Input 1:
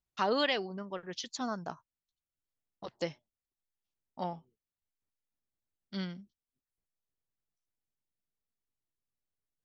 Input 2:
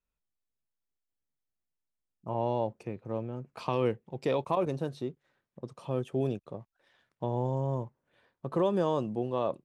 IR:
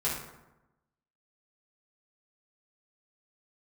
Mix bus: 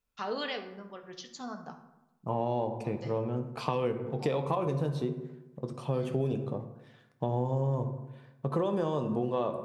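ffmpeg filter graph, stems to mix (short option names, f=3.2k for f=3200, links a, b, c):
-filter_complex "[0:a]volume=-8.5dB,asplit=2[a][b];[b]volume=-9dB[c];[1:a]volume=2.5dB,asplit=3[d][e][f];[e]volume=-11.5dB[g];[f]apad=whole_len=425310[h];[a][h]sidechaincompress=threshold=-38dB:ratio=8:attack=16:release=804[i];[2:a]atrim=start_sample=2205[j];[c][g]amix=inputs=2:normalize=0[k];[k][j]afir=irnorm=-1:irlink=0[l];[i][d][l]amix=inputs=3:normalize=0,acompressor=threshold=-26dB:ratio=6"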